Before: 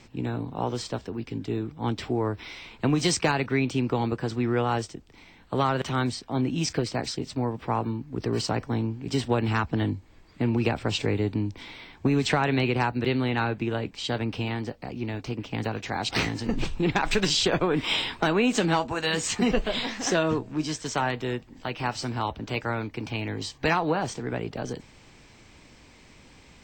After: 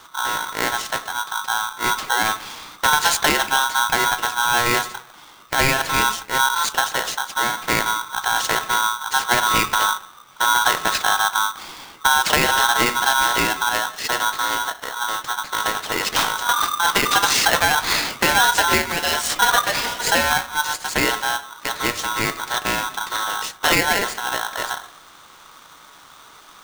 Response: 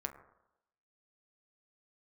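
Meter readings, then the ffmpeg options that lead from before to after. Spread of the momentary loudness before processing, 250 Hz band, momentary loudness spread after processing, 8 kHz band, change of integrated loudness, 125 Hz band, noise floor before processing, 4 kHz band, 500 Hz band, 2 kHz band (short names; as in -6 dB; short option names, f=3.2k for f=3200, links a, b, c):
10 LU, -5.0 dB, 9 LU, +14.0 dB, +8.0 dB, -7.5 dB, -53 dBFS, +10.5 dB, 0.0 dB, +13.0 dB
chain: -filter_complex "[0:a]asplit=2[a][b];[1:a]atrim=start_sample=2205,asetrate=48510,aresample=44100[c];[b][c]afir=irnorm=-1:irlink=0,volume=3dB[d];[a][d]amix=inputs=2:normalize=0,aeval=exprs='val(0)*sgn(sin(2*PI*1200*n/s))':c=same"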